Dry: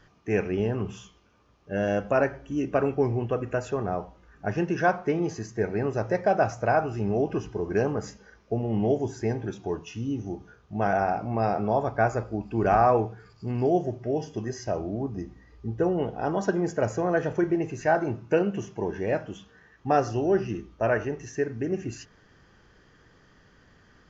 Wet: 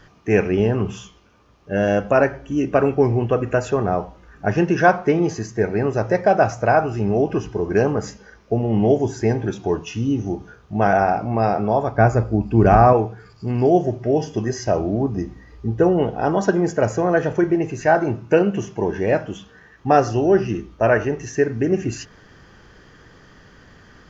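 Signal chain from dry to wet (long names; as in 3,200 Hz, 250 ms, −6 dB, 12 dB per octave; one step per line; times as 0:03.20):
0:11.97–0:12.93: low-shelf EQ 290 Hz +10 dB
speech leveller within 3 dB 2 s
level +7 dB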